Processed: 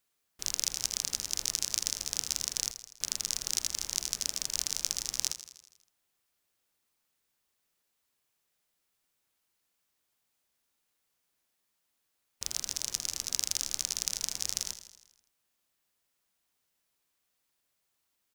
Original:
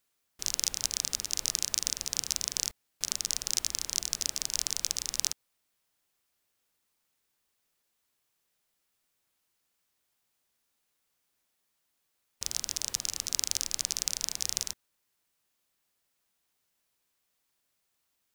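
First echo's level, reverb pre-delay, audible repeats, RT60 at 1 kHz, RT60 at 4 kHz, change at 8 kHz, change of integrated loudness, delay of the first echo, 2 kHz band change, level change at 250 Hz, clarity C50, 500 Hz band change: -13.0 dB, no reverb, 5, no reverb, no reverb, -1.0 dB, -1.0 dB, 81 ms, -1.0 dB, -1.0 dB, no reverb, -1.0 dB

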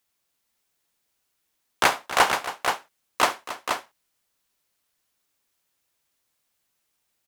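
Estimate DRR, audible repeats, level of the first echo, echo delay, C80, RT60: no reverb, 3, -18.0 dB, 68 ms, no reverb, no reverb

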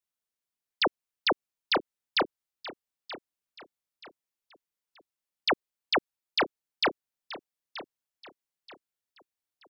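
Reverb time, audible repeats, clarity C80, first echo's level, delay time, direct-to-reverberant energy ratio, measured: no reverb, 3, no reverb, -15.0 dB, 929 ms, no reverb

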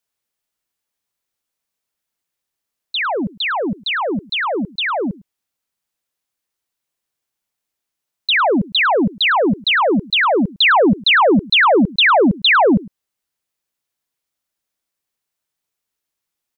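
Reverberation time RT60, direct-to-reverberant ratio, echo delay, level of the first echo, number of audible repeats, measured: no reverb, no reverb, 105 ms, -21.5 dB, 1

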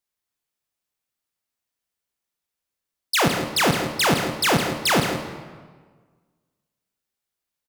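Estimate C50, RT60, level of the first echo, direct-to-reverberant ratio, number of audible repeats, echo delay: 5.0 dB, 1.5 s, -10.0 dB, 4.0 dB, 1, 160 ms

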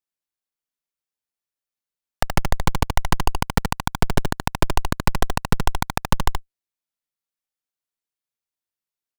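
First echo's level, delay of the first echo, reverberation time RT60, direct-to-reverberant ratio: -6.0 dB, 75 ms, no reverb, no reverb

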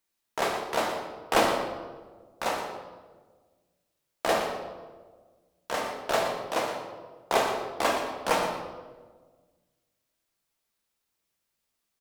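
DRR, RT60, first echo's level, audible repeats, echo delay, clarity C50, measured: 0.0 dB, 1.4 s, -11.5 dB, 1, 119 ms, 4.0 dB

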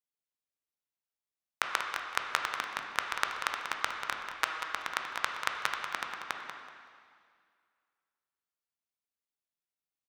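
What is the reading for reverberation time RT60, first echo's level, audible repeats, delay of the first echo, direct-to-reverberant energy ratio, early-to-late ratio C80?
2.1 s, -9.0 dB, 2, 189 ms, 1.0 dB, 3.0 dB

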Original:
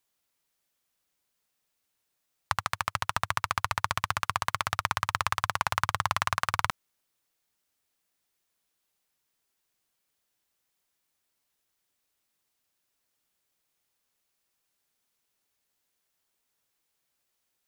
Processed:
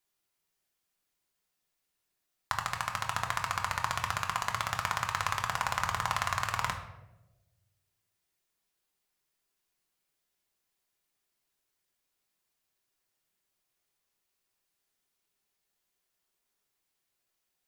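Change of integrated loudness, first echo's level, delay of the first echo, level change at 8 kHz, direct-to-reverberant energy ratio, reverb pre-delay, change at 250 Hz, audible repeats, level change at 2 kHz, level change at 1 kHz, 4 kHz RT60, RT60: -2.5 dB, no echo, no echo, -1.0 dB, 2.0 dB, 3 ms, -1.5 dB, no echo, -2.5 dB, -2.5 dB, 0.60 s, 1.1 s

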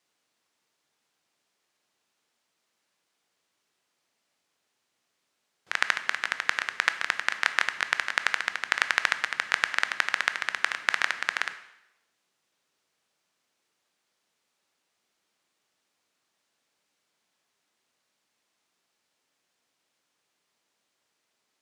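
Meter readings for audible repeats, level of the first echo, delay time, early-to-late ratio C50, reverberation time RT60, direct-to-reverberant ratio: no echo, no echo, no echo, 12.5 dB, 0.90 s, 10.0 dB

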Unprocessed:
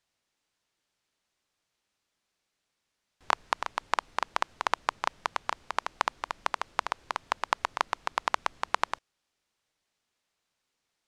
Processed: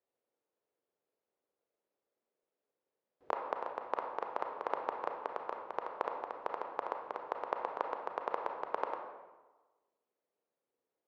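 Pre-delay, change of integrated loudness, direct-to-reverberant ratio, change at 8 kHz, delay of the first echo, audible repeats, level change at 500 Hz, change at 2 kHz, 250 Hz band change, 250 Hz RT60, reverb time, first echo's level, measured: 28 ms, -7.5 dB, 3.0 dB, under -25 dB, no echo, no echo, +2.0 dB, -14.0 dB, -2.0 dB, 1.2 s, 1.2 s, no echo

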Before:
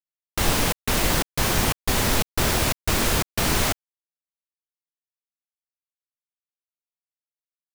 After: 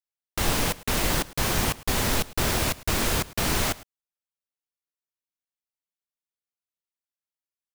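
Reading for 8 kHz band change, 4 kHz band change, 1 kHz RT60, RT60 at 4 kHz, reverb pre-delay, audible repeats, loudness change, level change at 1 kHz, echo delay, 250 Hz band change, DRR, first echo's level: -3.0 dB, -3.0 dB, no reverb, no reverb, no reverb, 1, -3.0 dB, -3.0 dB, 107 ms, -3.0 dB, no reverb, -20.0 dB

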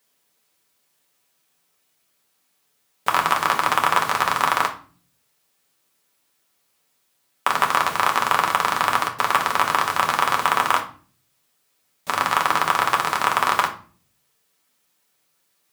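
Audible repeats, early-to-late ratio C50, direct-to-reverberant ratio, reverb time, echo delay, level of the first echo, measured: no echo, 11.5 dB, 1.0 dB, 0.40 s, no echo, no echo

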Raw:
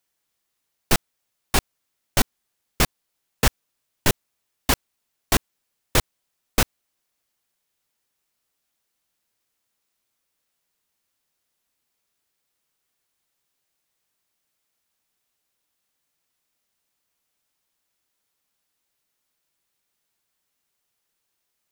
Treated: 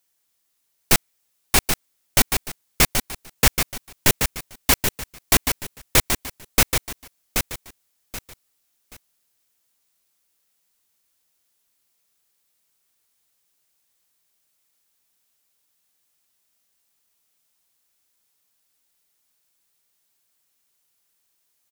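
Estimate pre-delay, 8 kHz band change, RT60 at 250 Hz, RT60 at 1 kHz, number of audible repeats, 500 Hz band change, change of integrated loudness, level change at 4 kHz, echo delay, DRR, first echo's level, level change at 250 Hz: no reverb, +7.0 dB, no reverb, no reverb, 3, +1.0 dB, +4.0 dB, +4.5 dB, 779 ms, no reverb, -6.0 dB, +1.0 dB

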